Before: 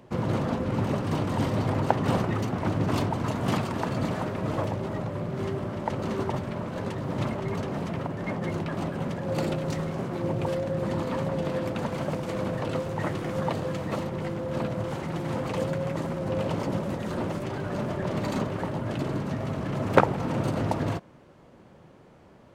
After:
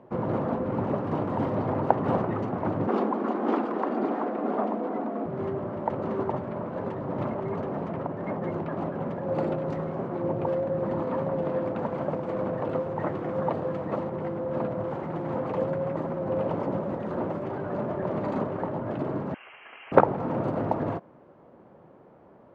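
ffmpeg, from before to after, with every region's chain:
ffmpeg -i in.wav -filter_complex "[0:a]asettb=1/sr,asplit=3[link_01][link_02][link_03];[link_01]atrim=end=2.874[link_04];[link_02]atrim=start=2.87:end=5.26,asetpts=PTS-STARTPTS,afade=type=in:duration=0.004:curve=qsin,afade=type=out:start_time=2.386:duration=0.004:curve=qsin,lowpass=6800,afreqshift=110[link_05];[link_03]atrim=start=5.256[link_06];[link_04][link_05]acrossfade=duration=0.004:curve1=hsin:curve2=qsin[link_07];[link_07][link_06]acrossfade=duration=0.004:curve1=qsin:curve2=hsin,asettb=1/sr,asplit=3[link_08][link_09][link_10];[link_08]atrim=end=19.344[link_11];[link_09]atrim=start=19.34:end=19.92,asetpts=PTS-STARTPTS,afade=type=in:duration=0.004:curve=qsin,afade=type=out:start_time=0.576:duration=0.004:curve=qsin,highpass=780,lowpass=frequency=2900:width_type=q:width=0.5098,lowpass=frequency=2900:width_type=q:width=0.6013,lowpass=frequency=2900:width_type=q:width=0.9,lowpass=frequency=2900:width_type=q:width=2.563,afreqshift=-3400[link_12];[link_10]atrim=start=19.916[link_13];[link_11][link_12]acrossfade=duration=0.004:curve1=hsin:curve2=qsin[link_14];[link_14][link_13]acrossfade=duration=0.004:curve1=qsin:curve2=hsin,lowpass=1000,aemphasis=mode=production:type=bsi,volume=4dB" out.wav

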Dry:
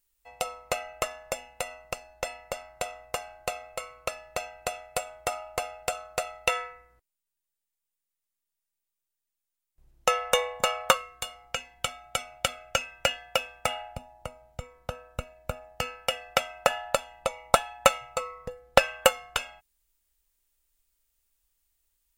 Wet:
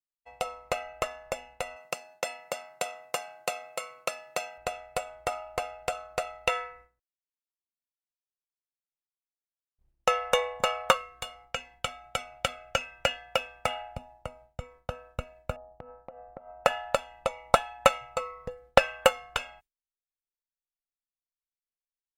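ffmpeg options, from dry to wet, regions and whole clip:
ffmpeg -i in.wav -filter_complex "[0:a]asettb=1/sr,asplit=3[link_01][link_02][link_03];[link_01]atrim=end=1.764[link_04];[link_02]atrim=start=1.76:end=4.58,asetpts=PTS-STARTPTS,afade=type=in:duration=0.004:curve=qsin,afade=type=out:start_time=2.816:duration=0.004:curve=qsin,highpass=frequency=150:width=0.5412,highpass=frequency=150:width=1.3066,highshelf=frequency=3800:gain=9.5[link_05];[link_03]atrim=start=4.576[link_06];[link_04][link_05]acrossfade=duration=0.004:curve1=hsin:curve2=qsin[link_07];[link_07][link_06]acrossfade=duration=0.004:curve1=qsin:curve2=hsin,asettb=1/sr,asplit=3[link_08][link_09][link_10];[link_08]atrim=end=15.564[link_11];[link_09]atrim=start=15.56:end=16.65,asetpts=PTS-STARTPTS,afade=type=in:duration=0.004:curve=qsin,afade=type=out:start_time=1.086:duration=0.004:curve=qsin,lowpass=frequency=1000:width=0.5412,lowpass=frequency=1000:width=1.3066,acompressor=threshold=-39dB:ratio=10:attack=3.2:release=140:knee=1:detection=peak[link_12];[link_10]atrim=start=16.646[link_13];[link_11][link_12]acrossfade=duration=0.004:curve1=hsin:curve2=qsin[link_14];[link_14][link_13]acrossfade=duration=0.004:curve1=qsin:curve2=hsin,agate=range=-33dB:threshold=-50dB:ratio=3:detection=peak,highshelf=frequency=5000:gain=-9.5" out.wav

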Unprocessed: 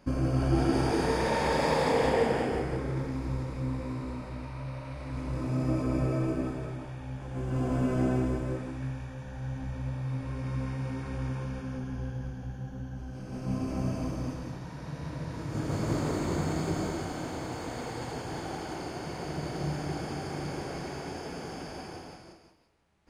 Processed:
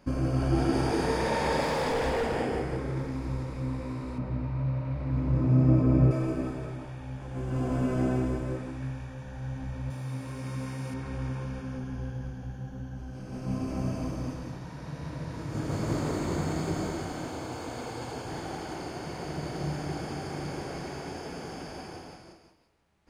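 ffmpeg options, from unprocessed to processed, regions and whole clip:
ffmpeg -i in.wav -filter_complex "[0:a]asettb=1/sr,asplit=3[link_01][link_02][link_03];[link_01]atrim=end=1.634[link_04];[link_02]atrim=start=1.63:end=2.36,asetpts=PTS-STARTPTS,afade=type=in:duration=0.004:curve=qsin,afade=type=out:start_time=0.726:duration=0.004:curve=qsin,volume=24.5dB,asoftclip=hard,volume=-24.5dB,asubboost=boost=12:cutoff=80[link_05];[link_03]atrim=start=2.356[link_06];[link_04][link_05]acrossfade=duration=0.004:curve1=hsin:curve2=qsin[link_07];[link_07][link_06]acrossfade=duration=0.004:curve1=qsin:curve2=hsin,asettb=1/sr,asplit=3[link_08][link_09][link_10];[link_08]atrim=end=4.184[link_11];[link_09]atrim=start=4.18:end=6.11,asetpts=PTS-STARTPTS,afade=type=in:duration=0.004:curve=qsin,afade=type=out:start_time=1.926:duration=0.004:curve=qsin,highpass=110,aemphasis=mode=reproduction:type=riaa[link_12];[link_10]atrim=start=6.106[link_13];[link_11][link_12]acrossfade=duration=0.004:curve1=hsin:curve2=qsin[link_14];[link_14][link_13]acrossfade=duration=0.004:curve1=qsin:curve2=hsin,asettb=1/sr,asplit=3[link_15][link_16][link_17];[link_15]atrim=end=9.904[link_18];[link_16]atrim=start=9.9:end=10.94,asetpts=PTS-STARTPTS,afade=type=in:duration=0.004:curve=qsin,afade=type=out:start_time=1.036:duration=0.004:curve=qsin,highpass=110,aemphasis=mode=production:type=50fm[link_19];[link_17]atrim=start=10.936[link_20];[link_18][link_19]acrossfade=duration=0.004:curve1=hsin:curve2=qsin[link_21];[link_21][link_20]acrossfade=duration=0.004:curve1=qsin:curve2=hsin,asettb=1/sr,asplit=3[link_22][link_23][link_24];[link_22]atrim=end=17.284[link_25];[link_23]atrim=start=17.28:end=18.27,asetpts=PTS-STARTPTS,afade=type=in:duration=0.004:curve=qsin,afade=type=out:start_time=0.986:duration=0.004:curve=qsin,highpass=53,equalizer=frequency=170:width=4.3:gain=-6,bandreject=frequency=1900:width=10[link_26];[link_24]atrim=start=18.266[link_27];[link_25][link_26]acrossfade=duration=0.004:curve1=hsin:curve2=qsin[link_28];[link_28][link_27]acrossfade=duration=0.004:curve1=qsin:curve2=hsin" out.wav

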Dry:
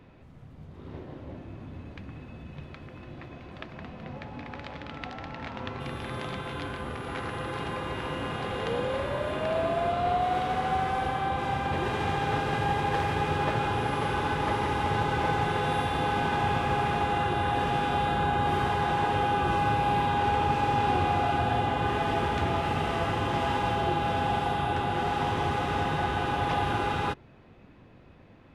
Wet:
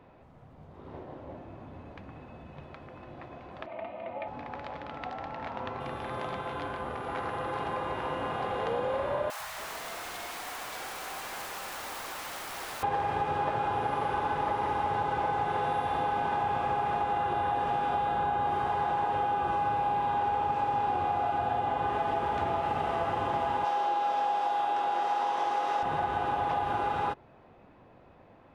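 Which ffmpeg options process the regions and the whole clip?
ffmpeg -i in.wav -filter_complex "[0:a]asettb=1/sr,asplit=3[link_01][link_02][link_03];[link_01]atrim=end=3.664[link_04];[link_02]atrim=start=3.66:end=4.28,asetpts=PTS-STARTPTS,afade=type=in:duration=0.004:curve=qsin,afade=type=out:start_time=0.616:duration=0.004:curve=qsin,highpass=frequency=110:width=0.5412,highpass=frequency=110:width=1.3066,equalizer=frequency=240:width_type=q:width=4:gain=-9,equalizer=frequency=350:width_type=q:width=4:gain=-4,equalizer=frequency=700:width_type=q:width=4:gain=8,equalizer=frequency=1000:width_type=q:width=4:gain=-4,equalizer=frequency=1600:width_type=q:width=4:gain=-9,equalizer=frequency=2300:width_type=q:width=4:gain=7,lowpass=frequency=3300:width=0.5412,lowpass=frequency=3300:width=1.3066,aecho=1:1:3.3:0.96,atrim=end_sample=27342[link_05];[link_03]atrim=start=4.276[link_06];[link_04][link_05]acrossfade=duration=0.004:curve1=hsin:curve2=qsin[link_07];[link_07][link_06]acrossfade=duration=0.004:curve1=qsin:curve2=hsin,asettb=1/sr,asplit=3[link_08][link_09][link_10];[link_08]atrim=end=9.304[link_11];[link_09]atrim=start=9.3:end=12.83,asetpts=PTS-STARTPTS,afade=type=in:duration=0.004:curve=qsin,afade=type=out:start_time=3.526:duration=0.004:curve=qsin,asplit=2[link_12][link_13];[link_13]highpass=frequency=720:poles=1,volume=38dB,asoftclip=type=tanh:threshold=-15dB[link_14];[link_12][link_14]amix=inputs=2:normalize=0,lowpass=frequency=7600:poles=1,volume=-6dB,aeval=exprs='(mod(35.5*val(0)+1,2)-1)/35.5':channel_layout=same,acrossover=split=160|650[link_15][link_16][link_17];[link_15]adelay=90[link_18];[link_16]adelay=280[link_19];[link_18][link_19][link_17]amix=inputs=3:normalize=0,atrim=end_sample=155673[link_20];[link_10]atrim=start=12.826[link_21];[link_11][link_20]acrossfade=duration=0.004:curve1=hsin:curve2=qsin[link_22];[link_22][link_21]acrossfade=duration=0.004:curve1=qsin:curve2=hsin,asettb=1/sr,asplit=3[link_23][link_24][link_25];[link_23]atrim=end=23.644[link_26];[link_24]atrim=start=23.64:end=25.83,asetpts=PTS-STARTPTS,afade=type=in:duration=0.004:curve=qsin,afade=type=out:start_time=2.186:duration=0.004:curve=qsin,highpass=390,equalizer=frequency=5600:width=1.5:gain=8.5,asplit=2[link_27][link_28];[link_28]adelay=23,volume=-4dB[link_29];[link_27][link_29]amix=inputs=2:normalize=0,atrim=end_sample=96579[link_30];[link_25]atrim=start=25.826[link_31];[link_26][link_30]acrossfade=duration=0.004:curve1=hsin:curve2=qsin[link_32];[link_32][link_31]acrossfade=duration=0.004:curve1=qsin:curve2=hsin,equalizer=frequency=770:width_type=o:width=1.9:gain=11.5,acompressor=threshold=-19dB:ratio=6,volume=-7dB" out.wav

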